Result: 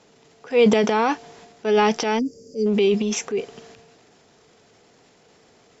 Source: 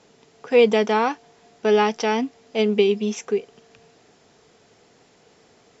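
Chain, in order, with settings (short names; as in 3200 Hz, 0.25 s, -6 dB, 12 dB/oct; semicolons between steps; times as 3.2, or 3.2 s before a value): transient shaper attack -5 dB, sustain +9 dB; spectral gain 2.19–2.67, 590–4500 Hz -28 dB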